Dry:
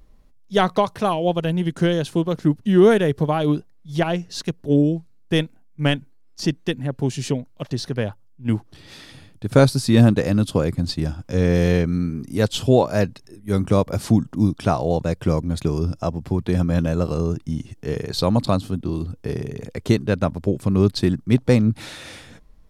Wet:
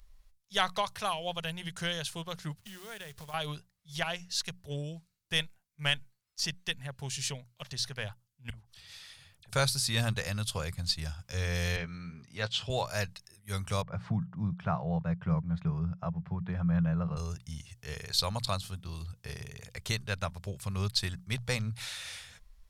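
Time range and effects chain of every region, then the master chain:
0:02.59–0:03.34: downward compressor, threshold −27 dBFS + log-companded quantiser 6 bits
0:08.50–0:09.53: downward compressor 3 to 1, threshold −43 dBFS + all-pass dispersion lows, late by 43 ms, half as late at 1,900 Hz
0:11.76–0:12.70: band-pass filter 120–3,600 Hz + double-tracking delay 17 ms −12 dB
0:13.82–0:17.17: Chebyshev band-pass filter 110–1,400 Hz + parametric band 170 Hz +13.5 dB 0.5 octaves
whole clip: guitar amp tone stack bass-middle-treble 10-0-10; mains-hum notches 60/120/180 Hz

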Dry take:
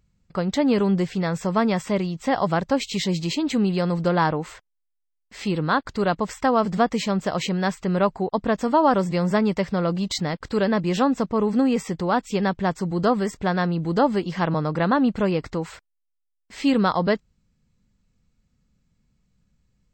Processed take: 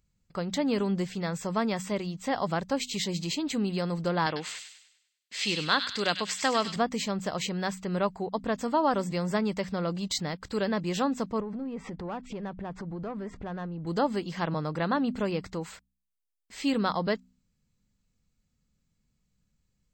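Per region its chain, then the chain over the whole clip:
0:04.26–0:06.76: meter weighting curve D + delay with a high-pass on its return 99 ms, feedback 44%, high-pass 2,300 Hz, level −4.5 dB
0:11.40–0:13.87: RIAA equalisation playback + downward compressor 10 to 1, threshold −26 dBFS + mid-hump overdrive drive 16 dB, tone 1,500 Hz, clips at −18.5 dBFS
whole clip: high-shelf EQ 3,900 Hz +8 dB; notch filter 5,500 Hz, Q 30; hum removal 62.45 Hz, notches 4; level −7.5 dB

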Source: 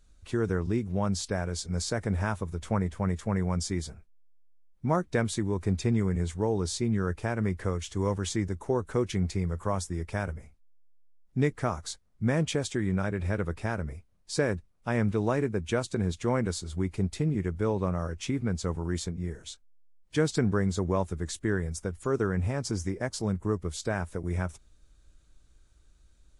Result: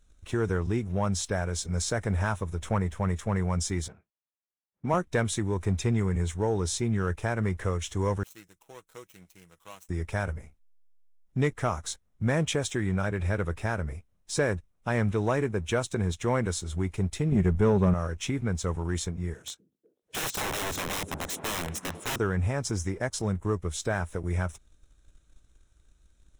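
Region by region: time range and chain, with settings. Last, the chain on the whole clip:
0:03.88–0:04.94: high-pass filter 150 Hz + low-pass that shuts in the quiet parts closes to 2,000 Hz, open at −33 dBFS
0:08.23–0:09.89: running median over 25 samples + first-order pre-emphasis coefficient 0.97 + comb filter 6.2 ms, depth 46%
0:17.32–0:17.94: low-shelf EQ 330 Hz +10.5 dB + comb filter 4.9 ms, depth 40%
0:19.34–0:22.16: high-pass filter 110 Hz + wrap-around overflow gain 29.5 dB + echo through a band-pass that steps 247 ms, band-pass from 230 Hz, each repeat 0.7 octaves, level −6.5 dB
whole clip: dynamic equaliser 240 Hz, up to −5 dB, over −40 dBFS, Q 0.71; leveller curve on the samples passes 1; notch filter 4,600 Hz, Q 5.4

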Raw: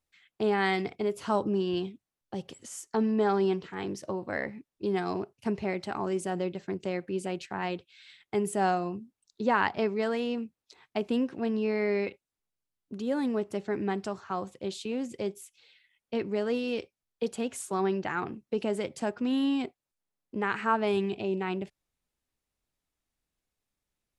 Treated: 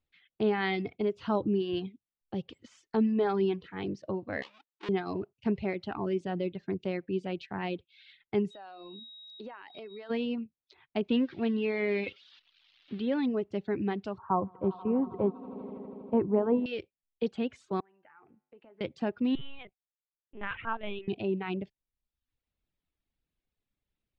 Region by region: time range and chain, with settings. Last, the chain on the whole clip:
0:04.42–0:04.89: each half-wave held at its own peak + high-pass filter 640 Hz + downward compressor 1.5 to 1, threshold −44 dBFS
0:08.50–0:10.09: high-pass filter 380 Hz + steady tone 3,800 Hz −42 dBFS + downward compressor 8 to 1, threshold −39 dBFS
0:11.09–0:13.26: spike at every zero crossing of −33.5 dBFS + low-pass filter 3,600 Hz 24 dB per octave + high-shelf EQ 2,800 Hz +11.5 dB
0:14.18–0:16.66: low-pass with resonance 970 Hz, resonance Q 4.5 + low-shelf EQ 360 Hz +5.5 dB + echo that builds up and dies away 80 ms, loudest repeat 5, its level −18 dB
0:17.80–0:18.81: three-way crossover with the lows and the highs turned down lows −13 dB, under 520 Hz, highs −23 dB, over 2,200 Hz + downward compressor 2.5 to 1, threshold −46 dBFS + tuned comb filter 51 Hz, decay 0.77 s, harmonics odd, mix 70%
0:19.35–0:21.08: high-pass filter 1,200 Hz 6 dB per octave + linear-prediction vocoder at 8 kHz pitch kept
whole clip: low-pass filter 3,700 Hz 24 dB per octave; reverb reduction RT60 0.73 s; parametric band 1,100 Hz −7.5 dB 2.7 octaves; level +3.5 dB

